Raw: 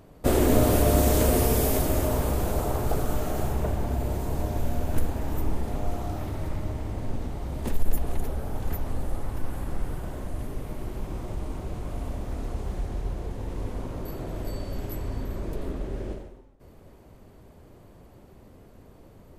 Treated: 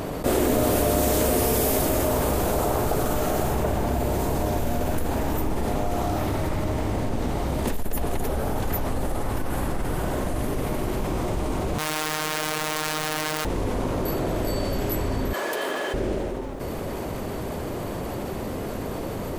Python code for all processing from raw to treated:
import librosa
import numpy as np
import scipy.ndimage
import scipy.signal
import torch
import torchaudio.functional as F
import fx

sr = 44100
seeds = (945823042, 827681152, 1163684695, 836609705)

y = fx.chain(x, sr, fx.high_shelf(hz=9500.0, db=-9.0),
    fx.overflow_wrap(gain_db=36.0),
    fx.robotise(hz=154.0), at=(11.78, 13.45))
y = fx.chain(y, sr, fx.highpass(hz=680.0, slope=12),
    fx.quant_dither(seeds[0], bits=12, dither='none'),
    fx.small_body(hz=(1700.0, 3100.0), ring_ms=90, db=17), at=(15.33, 15.94))
y = fx.low_shelf(y, sr, hz=140.0, db=-9.5)
y = fx.env_flatten(y, sr, amount_pct=70)